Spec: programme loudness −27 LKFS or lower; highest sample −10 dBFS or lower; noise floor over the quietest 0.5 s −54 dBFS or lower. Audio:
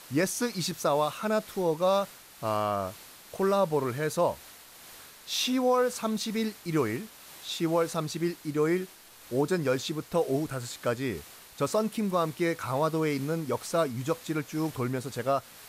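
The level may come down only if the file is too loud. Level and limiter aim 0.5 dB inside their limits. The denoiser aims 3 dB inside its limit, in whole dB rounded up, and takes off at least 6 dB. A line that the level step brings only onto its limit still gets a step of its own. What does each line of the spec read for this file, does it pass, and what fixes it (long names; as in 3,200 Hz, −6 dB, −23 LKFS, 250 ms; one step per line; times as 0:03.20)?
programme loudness −29.5 LKFS: in spec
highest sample −15.0 dBFS: in spec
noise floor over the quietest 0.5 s −50 dBFS: out of spec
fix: broadband denoise 7 dB, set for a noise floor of −50 dBFS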